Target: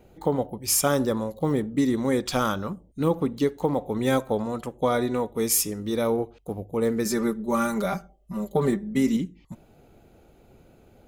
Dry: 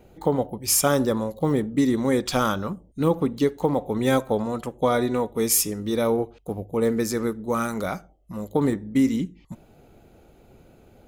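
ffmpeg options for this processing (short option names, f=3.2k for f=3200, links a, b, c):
-filter_complex "[0:a]asettb=1/sr,asplit=3[a][b][c];[a]atrim=end=7.054[d];[b]atrim=start=7.05:end=9.17,asetpts=PTS-STARTPTS,afade=t=in:d=0.004:c=qsin,afade=t=out:st=2.116:d=0.004:c=qsin,aecho=1:1:5.1:0.95,atrim=end_sample=93492[e];[c]atrim=start=9.166[f];[d][e]acrossfade=d=0.004:c1=hsin:c2=qsin[g];[g][f]acrossfade=d=0.004:c1=qsin:c2=hsin,volume=-2dB"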